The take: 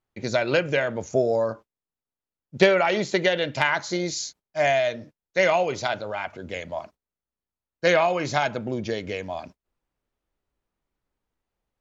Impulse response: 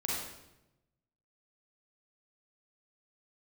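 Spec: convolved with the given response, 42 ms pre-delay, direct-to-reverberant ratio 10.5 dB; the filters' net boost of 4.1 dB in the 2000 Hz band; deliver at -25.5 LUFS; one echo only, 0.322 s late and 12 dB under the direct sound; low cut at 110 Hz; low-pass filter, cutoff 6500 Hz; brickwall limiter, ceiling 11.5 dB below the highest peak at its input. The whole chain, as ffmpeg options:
-filter_complex "[0:a]highpass=110,lowpass=6.5k,equalizer=f=2k:t=o:g=5,alimiter=limit=-12dB:level=0:latency=1,aecho=1:1:322:0.251,asplit=2[a][b];[1:a]atrim=start_sample=2205,adelay=42[c];[b][c]afir=irnorm=-1:irlink=0,volume=-15.5dB[d];[a][d]amix=inputs=2:normalize=0,volume=-0.5dB"

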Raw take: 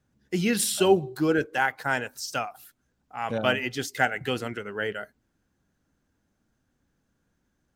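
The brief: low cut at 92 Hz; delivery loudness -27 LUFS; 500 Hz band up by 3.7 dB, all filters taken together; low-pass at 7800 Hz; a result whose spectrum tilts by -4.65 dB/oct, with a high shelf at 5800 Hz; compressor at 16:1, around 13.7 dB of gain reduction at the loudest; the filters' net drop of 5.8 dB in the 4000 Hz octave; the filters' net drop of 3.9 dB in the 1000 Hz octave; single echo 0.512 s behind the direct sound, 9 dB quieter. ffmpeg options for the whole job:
-af "highpass=92,lowpass=7.8k,equalizer=f=500:t=o:g=7,equalizer=f=1k:t=o:g=-9,equalizer=f=4k:t=o:g=-6,highshelf=f=5.8k:g=-4.5,acompressor=threshold=-25dB:ratio=16,aecho=1:1:512:0.355,volume=5.5dB"

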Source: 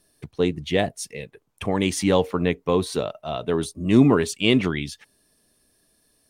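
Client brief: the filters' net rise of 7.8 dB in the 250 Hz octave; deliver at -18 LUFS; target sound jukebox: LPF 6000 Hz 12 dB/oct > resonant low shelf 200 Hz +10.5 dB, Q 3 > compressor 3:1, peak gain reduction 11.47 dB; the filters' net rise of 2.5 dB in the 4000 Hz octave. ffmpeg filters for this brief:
-af "lowpass=6k,lowshelf=f=200:t=q:w=3:g=10.5,equalizer=f=250:t=o:g=8,equalizer=f=4k:t=o:g=4,acompressor=threshold=-15dB:ratio=3,volume=2dB"

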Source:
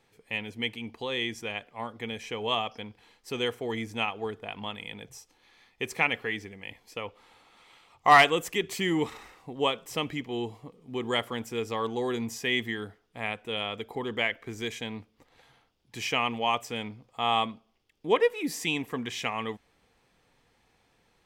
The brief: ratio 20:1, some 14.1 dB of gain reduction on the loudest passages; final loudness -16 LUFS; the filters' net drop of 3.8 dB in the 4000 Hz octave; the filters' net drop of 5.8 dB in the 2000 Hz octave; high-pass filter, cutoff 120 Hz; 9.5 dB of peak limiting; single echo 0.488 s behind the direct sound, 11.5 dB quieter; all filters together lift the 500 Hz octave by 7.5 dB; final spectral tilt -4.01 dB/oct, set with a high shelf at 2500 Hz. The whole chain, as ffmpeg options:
-af "highpass=120,equalizer=f=500:t=o:g=9,equalizer=f=2k:t=o:g=-8,highshelf=f=2.5k:g=5,equalizer=f=4k:t=o:g=-6,acompressor=threshold=-24dB:ratio=20,alimiter=limit=-22dB:level=0:latency=1,aecho=1:1:488:0.266,volume=18dB"

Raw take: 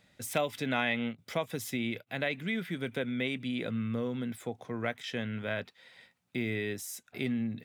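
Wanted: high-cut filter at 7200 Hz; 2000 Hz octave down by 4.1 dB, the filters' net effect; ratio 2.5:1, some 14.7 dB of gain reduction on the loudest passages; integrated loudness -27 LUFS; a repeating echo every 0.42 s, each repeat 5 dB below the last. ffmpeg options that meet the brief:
-af "lowpass=7.2k,equalizer=f=2k:t=o:g=-5,acompressor=threshold=-49dB:ratio=2.5,aecho=1:1:420|840|1260|1680|2100|2520|2940:0.562|0.315|0.176|0.0988|0.0553|0.031|0.0173,volume=19dB"

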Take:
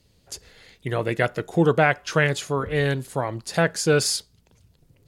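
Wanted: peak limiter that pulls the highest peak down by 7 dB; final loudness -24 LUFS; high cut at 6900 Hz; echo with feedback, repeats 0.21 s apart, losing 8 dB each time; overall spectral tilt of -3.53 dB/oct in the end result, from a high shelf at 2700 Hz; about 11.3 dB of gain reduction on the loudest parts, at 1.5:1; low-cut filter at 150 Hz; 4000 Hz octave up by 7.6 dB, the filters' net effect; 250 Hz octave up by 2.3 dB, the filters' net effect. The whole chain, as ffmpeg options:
-af "highpass=150,lowpass=6.9k,equalizer=f=250:t=o:g=5,highshelf=f=2.7k:g=4,equalizer=f=4k:t=o:g=7,acompressor=threshold=-45dB:ratio=1.5,alimiter=limit=-21dB:level=0:latency=1,aecho=1:1:210|420|630|840|1050:0.398|0.159|0.0637|0.0255|0.0102,volume=9dB"

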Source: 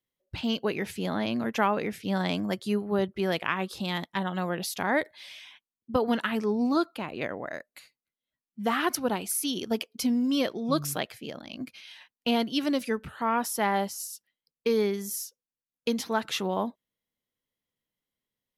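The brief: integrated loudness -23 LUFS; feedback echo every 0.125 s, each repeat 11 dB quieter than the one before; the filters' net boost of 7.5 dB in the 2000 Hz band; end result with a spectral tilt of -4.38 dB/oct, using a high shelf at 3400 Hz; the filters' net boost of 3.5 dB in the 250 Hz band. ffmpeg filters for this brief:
-af "equalizer=f=250:t=o:g=4,equalizer=f=2k:t=o:g=8,highshelf=f=3.4k:g=4,aecho=1:1:125|250|375:0.282|0.0789|0.0221,volume=2.5dB"

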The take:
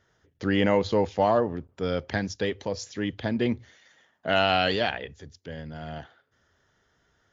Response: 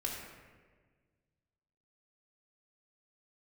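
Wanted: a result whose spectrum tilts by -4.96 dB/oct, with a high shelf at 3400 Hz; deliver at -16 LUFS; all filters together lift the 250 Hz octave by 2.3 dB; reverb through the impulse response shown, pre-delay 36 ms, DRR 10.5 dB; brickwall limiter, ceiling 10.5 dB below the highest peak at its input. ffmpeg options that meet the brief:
-filter_complex "[0:a]equalizer=f=250:t=o:g=3,highshelf=f=3.4k:g=-4,alimiter=limit=-18.5dB:level=0:latency=1,asplit=2[a][b];[1:a]atrim=start_sample=2205,adelay=36[c];[b][c]afir=irnorm=-1:irlink=0,volume=-13dB[d];[a][d]amix=inputs=2:normalize=0,volume=15dB"

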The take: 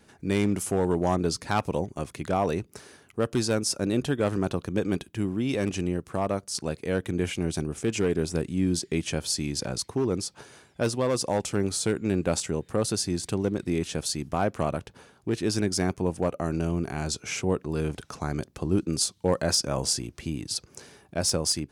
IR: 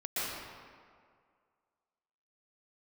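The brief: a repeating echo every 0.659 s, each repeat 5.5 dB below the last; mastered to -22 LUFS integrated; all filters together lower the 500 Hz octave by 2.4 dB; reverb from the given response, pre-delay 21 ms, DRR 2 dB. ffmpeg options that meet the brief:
-filter_complex "[0:a]equalizer=f=500:t=o:g=-3,aecho=1:1:659|1318|1977|2636|3295|3954|4613:0.531|0.281|0.149|0.079|0.0419|0.0222|0.0118,asplit=2[a][b];[1:a]atrim=start_sample=2205,adelay=21[c];[b][c]afir=irnorm=-1:irlink=0,volume=-8.5dB[d];[a][d]amix=inputs=2:normalize=0,volume=4dB"

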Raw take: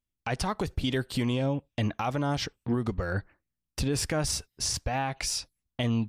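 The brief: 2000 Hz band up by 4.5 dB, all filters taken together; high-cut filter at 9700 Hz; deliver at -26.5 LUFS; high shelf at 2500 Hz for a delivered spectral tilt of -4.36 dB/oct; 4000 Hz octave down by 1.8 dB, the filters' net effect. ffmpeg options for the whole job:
-af "lowpass=9.7k,equalizer=f=2k:t=o:g=6,highshelf=f=2.5k:g=4.5,equalizer=f=4k:t=o:g=-9,volume=3.5dB"

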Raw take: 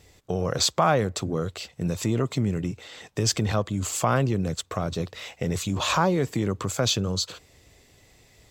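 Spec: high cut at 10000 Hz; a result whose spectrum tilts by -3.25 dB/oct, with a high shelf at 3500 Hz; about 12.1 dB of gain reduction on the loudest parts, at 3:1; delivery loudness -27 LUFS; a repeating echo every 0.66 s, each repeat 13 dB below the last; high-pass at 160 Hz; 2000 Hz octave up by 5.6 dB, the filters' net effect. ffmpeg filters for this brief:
-af "highpass=160,lowpass=10k,equalizer=f=2k:t=o:g=6.5,highshelf=f=3.5k:g=4,acompressor=threshold=-32dB:ratio=3,aecho=1:1:660|1320|1980:0.224|0.0493|0.0108,volume=6.5dB"

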